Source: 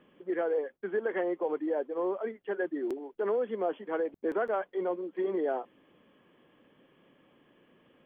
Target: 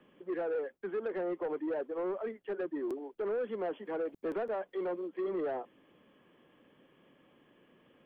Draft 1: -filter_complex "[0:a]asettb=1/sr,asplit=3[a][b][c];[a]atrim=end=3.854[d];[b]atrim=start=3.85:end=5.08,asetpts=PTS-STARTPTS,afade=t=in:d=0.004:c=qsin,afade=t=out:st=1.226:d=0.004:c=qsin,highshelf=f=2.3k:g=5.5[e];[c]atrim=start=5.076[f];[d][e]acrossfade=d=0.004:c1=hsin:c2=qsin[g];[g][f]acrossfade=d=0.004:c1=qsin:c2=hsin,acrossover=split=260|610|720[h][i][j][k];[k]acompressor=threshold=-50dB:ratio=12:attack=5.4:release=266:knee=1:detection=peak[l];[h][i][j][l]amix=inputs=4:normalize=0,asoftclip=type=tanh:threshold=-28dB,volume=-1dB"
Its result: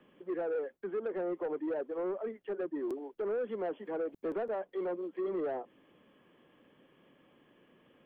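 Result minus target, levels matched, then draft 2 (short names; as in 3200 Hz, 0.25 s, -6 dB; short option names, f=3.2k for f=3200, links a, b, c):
compressor: peak gain reduction +6 dB
-filter_complex "[0:a]asettb=1/sr,asplit=3[a][b][c];[a]atrim=end=3.854[d];[b]atrim=start=3.85:end=5.08,asetpts=PTS-STARTPTS,afade=t=in:d=0.004:c=qsin,afade=t=out:st=1.226:d=0.004:c=qsin,highshelf=f=2.3k:g=5.5[e];[c]atrim=start=5.076[f];[d][e]acrossfade=d=0.004:c1=hsin:c2=qsin[g];[g][f]acrossfade=d=0.004:c1=qsin:c2=hsin,acrossover=split=260|610|720[h][i][j][k];[k]acompressor=threshold=-43.5dB:ratio=12:attack=5.4:release=266:knee=1:detection=peak[l];[h][i][j][l]amix=inputs=4:normalize=0,asoftclip=type=tanh:threshold=-28dB,volume=-1dB"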